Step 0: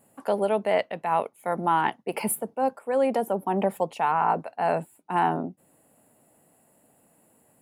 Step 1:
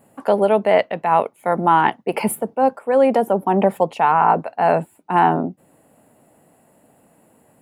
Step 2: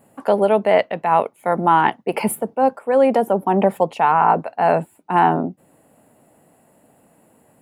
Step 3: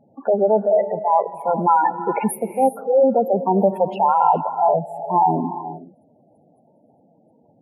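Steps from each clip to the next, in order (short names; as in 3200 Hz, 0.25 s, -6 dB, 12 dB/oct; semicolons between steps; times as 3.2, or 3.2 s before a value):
bell 13000 Hz -8 dB 2.1 oct; gain +8.5 dB
nothing audible
spectral gate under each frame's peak -10 dB strong; non-linear reverb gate 0.44 s rising, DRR 11 dB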